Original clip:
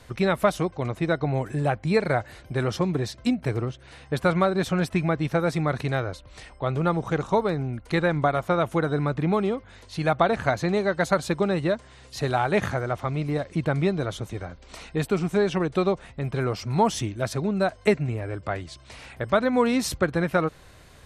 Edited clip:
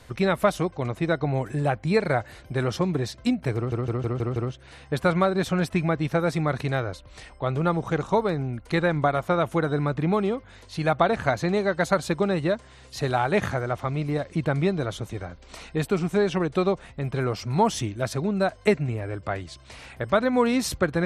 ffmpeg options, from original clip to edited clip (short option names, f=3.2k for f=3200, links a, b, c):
-filter_complex "[0:a]asplit=6[a][b][c][d][e][f];[a]atrim=end=3.722[g];[b]atrim=start=3.558:end=3.722[h];[c]atrim=start=3.558:end=3.722[i];[d]atrim=start=3.558:end=3.722[j];[e]atrim=start=3.558:end=3.722[k];[f]atrim=start=3.558[l];[g][h]acrossfade=d=0.004:c1=hsin:c2=hsin[m];[m][i]acrossfade=d=0.004:c1=hsin:c2=hsin[n];[n][j]acrossfade=d=0.004:c1=hsin:c2=hsin[o];[o][k]acrossfade=d=0.004:c1=hsin:c2=hsin[p];[p][l]acrossfade=d=0.004:c1=hsin:c2=hsin"